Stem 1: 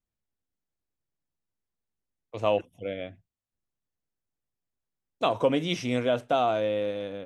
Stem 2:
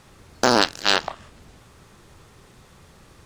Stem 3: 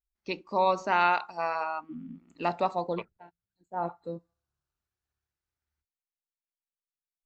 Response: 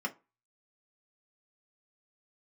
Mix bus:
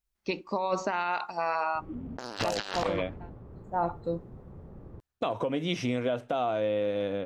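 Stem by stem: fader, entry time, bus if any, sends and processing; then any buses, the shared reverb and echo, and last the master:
+2.0 dB, 0.00 s, no send, noise gate −44 dBFS, range −16 dB; high-shelf EQ 4,100 Hz −7.5 dB; downward compressor 12 to 1, threshold −30 dBFS, peak gain reduction 13 dB
+2.0 dB, 1.75 s, no send, low-pass that shuts in the quiet parts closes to 450 Hz, open at −19 dBFS
+2.0 dB, 0.00 s, no send, automatic ducking −6 dB, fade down 1.10 s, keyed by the first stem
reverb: not used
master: compressor whose output falls as the input rises −25 dBFS, ratio −0.5; brickwall limiter −18 dBFS, peak gain reduction 9.5 dB

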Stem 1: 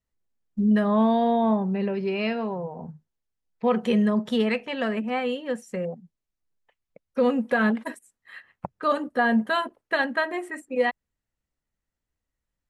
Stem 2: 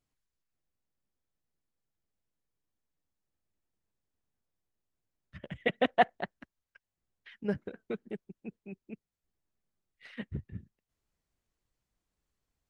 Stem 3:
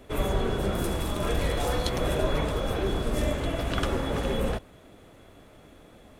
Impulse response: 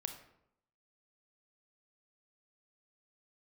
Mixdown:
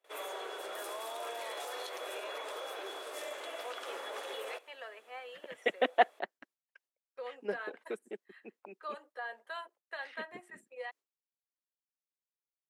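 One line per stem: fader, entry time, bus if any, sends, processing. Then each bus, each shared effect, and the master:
−15.5 dB, 0.00 s, bus A, no send, no processing
−1.0 dB, 0.00 s, no bus, no send, no processing
−6.5 dB, 0.00 s, bus A, no send, no processing
bus A: 0.0 dB, Bessel high-pass filter 640 Hz, order 6; brickwall limiter −31.5 dBFS, peak gain reduction 8.5 dB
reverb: not used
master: high-pass filter 310 Hz 24 dB per octave; noise gate with hold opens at −54 dBFS

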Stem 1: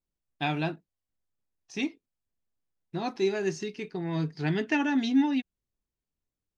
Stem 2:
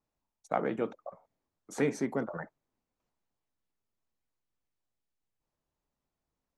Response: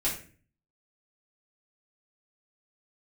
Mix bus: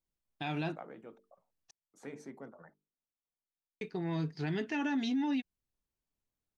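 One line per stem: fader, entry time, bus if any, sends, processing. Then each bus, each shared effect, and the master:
−3.0 dB, 0.00 s, muted 0:01.71–0:03.81, no send, no processing
−12.0 dB, 0.25 s, no send, mains-hum notches 50/100/150/200/250/300/350/400/450 Hz; automatic ducking −9 dB, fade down 1.60 s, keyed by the first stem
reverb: not used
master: brickwall limiter −26.5 dBFS, peak gain reduction 8.5 dB

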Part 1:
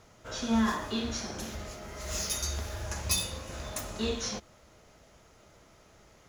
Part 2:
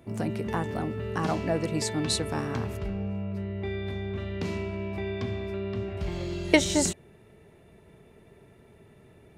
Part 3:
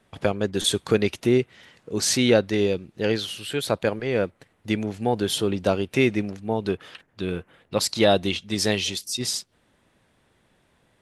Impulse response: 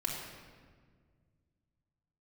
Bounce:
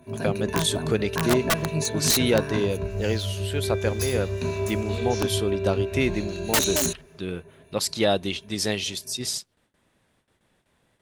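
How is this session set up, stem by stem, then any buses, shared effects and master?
0:03.65 −15 dB → 0:04.05 −5 dB, 0.90 s, no send, no processing
+1.0 dB, 0.00 s, no send, EQ curve with evenly spaced ripples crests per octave 1.5, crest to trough 16 dB; two-band tremolo in antiphase 6.7 Hz, depth 50%, crossover 1,600 Hz; wrap-around overflow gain 17 dB
−3.5 dB, 0.00 s, no send, noise gate with hold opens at −54 dBFS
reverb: not used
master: high-shelf EQ 7,100 Hz +4.5 dB

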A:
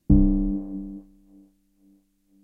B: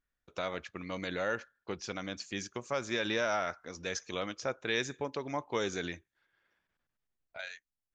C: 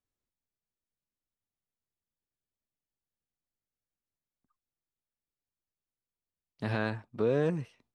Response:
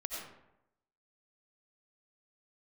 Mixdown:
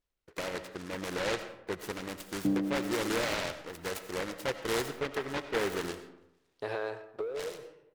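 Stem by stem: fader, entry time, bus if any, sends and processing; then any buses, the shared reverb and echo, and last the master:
−5.0 dB, 2.35 s, no send, high-pass filter 310 Hz 12 dB per octave
−6.5 dB, 0.00 s, send −6.5 dB, parametric band 260 Hz +9.5 dB 1.4 octaves; comb filter 2.1 ms, depth 58%; short delay modulated by noise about 1,200 Hz, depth 0.19 ms
−4.5 dB, 0.00 s, send −10.5 dB, low shelf with overshoot 300 Hz −12 dB, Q 3; leveller curve on the samples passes 1; downward compressor 6 to 1, threshold −28 dBFS, peak gain reduction 10 dB; automatic ducking −9 dB, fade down 0.20 s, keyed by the second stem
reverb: on, RT60 0.85 s, pre-delay 50 ms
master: no processing

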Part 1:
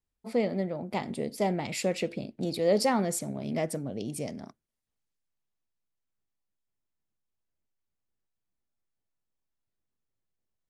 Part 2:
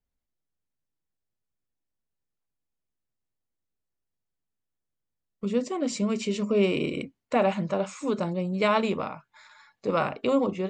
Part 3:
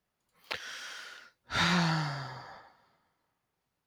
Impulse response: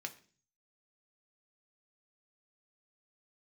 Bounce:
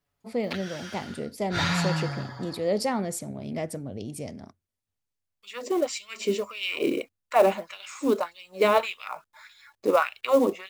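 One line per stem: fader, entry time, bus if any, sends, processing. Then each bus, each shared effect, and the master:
−1.5 dB, 0.00 s, no send, no processing
0.0 dB, 0.00 s, no send, auto-filter high-pass sine 1.7 Hz 290–3,300 Hz; log-companded quantiser 6 bits
−1.5 dB, 0.00 s, no send, comb filter 7.1 ms, depth 81%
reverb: not used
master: parametric band 92 Hz +13 dB 0.35 octaves

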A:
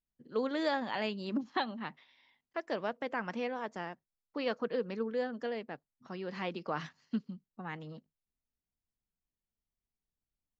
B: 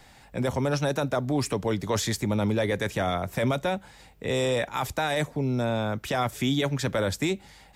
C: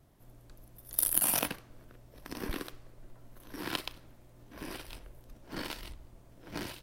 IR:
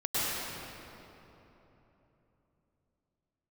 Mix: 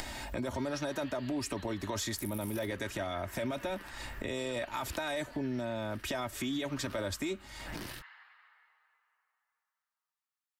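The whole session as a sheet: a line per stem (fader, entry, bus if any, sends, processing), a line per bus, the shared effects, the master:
−5.5 dB, 0.00 s, no bus, send −5 dB, inverse Chebyshev high-pass filter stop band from 280 Hz, stop band 70 dB; brickwall limiter −33.5 dBFS, peak gain reduction 8.5 dB
+1.5 dB, 0.00 s, bus A, no send, comb filter 3.2 ms, depth 64%
−9.5 dB, 1.20 s, bus A, no send, bass and treble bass +4 dB, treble +4 dB
bus A: 0.0 dB, upward compression, threshold −29 dBFS; brickwall limiter −18.5 dBFS, peak gain reduction 8.5 dB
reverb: on, RT60 3.5 s, pre-delay 95 ms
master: downward compressor 2 to 1, threshold −39 dBFS, peak gain reduction 9.5 dB

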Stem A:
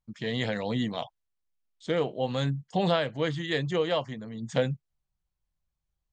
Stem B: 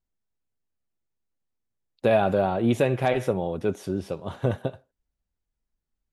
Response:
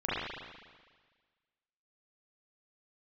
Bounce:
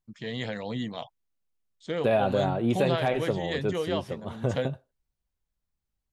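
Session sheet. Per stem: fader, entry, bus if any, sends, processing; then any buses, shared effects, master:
−3.5 dB, 0.00 s, no send, no processing
−3.5 dB, 0.00 s, no send, no processing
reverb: not used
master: no processing

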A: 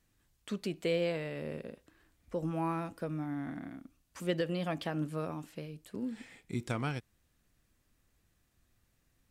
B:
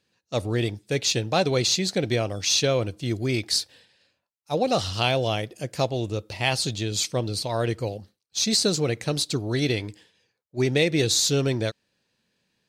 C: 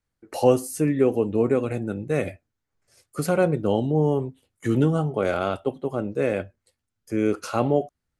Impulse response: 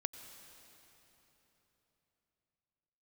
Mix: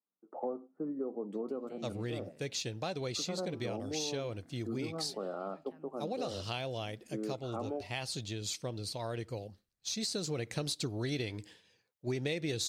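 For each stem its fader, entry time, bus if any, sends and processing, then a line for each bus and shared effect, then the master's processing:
−18.0 dB, 0.85 s, no send, downward compressor, threshold −36 dBFS, peak gain reduction 9.5 dB
0:09.93 −10 dB → 0:10.54 −1.5 dB, 1.50 s, no send, no processing
−11.5 dB, 0.00 s, no send, Chebyshev band-pass filter 180–1,300 Hz, order 4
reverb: not used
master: downward compressor 4 to 1, threshold −34 dBFS, peak gain reduction 13.5 dB

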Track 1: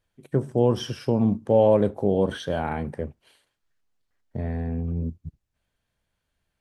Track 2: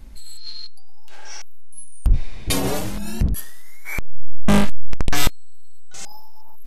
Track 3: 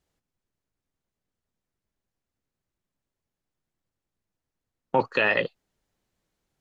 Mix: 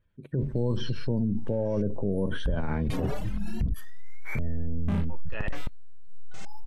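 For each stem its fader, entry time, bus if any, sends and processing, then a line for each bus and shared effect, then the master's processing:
+0.5 dB, 0.00 s, no bus, no send, parametric band 760 Hz −12 dB 0.23 octaves; gate on every frequency bin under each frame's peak −30 dB strong
−4.5 dB, 0.40 s, bus A, no send, reverb reduction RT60 1.1 s
−9.5 dB, 0.15 s, bus A, no send, no processing
bus A: 0.0 dB, brickwall limiter −19.5 dBFS, peak gain reduction 11 dB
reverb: not used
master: bass and treble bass +7 dB, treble −14 dB; brickwall limiter −19.5 dBFS, peak gain reduction 13.5 dB

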